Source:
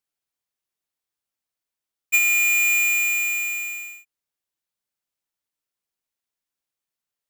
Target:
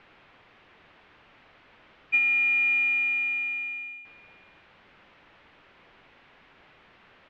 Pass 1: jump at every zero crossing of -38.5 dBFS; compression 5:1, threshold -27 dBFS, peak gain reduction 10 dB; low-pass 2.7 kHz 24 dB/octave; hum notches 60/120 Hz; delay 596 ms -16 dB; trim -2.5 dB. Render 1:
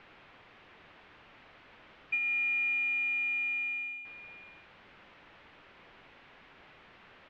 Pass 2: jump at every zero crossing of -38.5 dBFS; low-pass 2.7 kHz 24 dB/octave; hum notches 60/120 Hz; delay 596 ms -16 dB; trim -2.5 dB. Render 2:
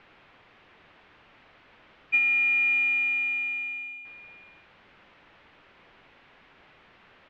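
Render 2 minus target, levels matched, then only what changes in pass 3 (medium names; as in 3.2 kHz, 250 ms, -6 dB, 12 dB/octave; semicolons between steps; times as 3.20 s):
echo-to-direct +7 dB
change: delay 596 ms -23 dB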